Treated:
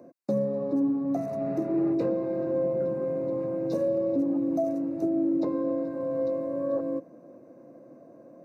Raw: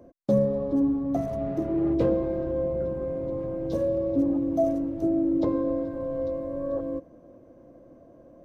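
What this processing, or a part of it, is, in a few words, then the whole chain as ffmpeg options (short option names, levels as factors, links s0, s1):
PA system with an anti-feedback notch: -af "highpass=f=140:w=0.5412,highpass=f=140:w=1.3066,asuperstop=centerf=3200:order=8:qfactor=4.2,alimiter=limit=0.1:level=0:latency=1:release=438,volume=1.19"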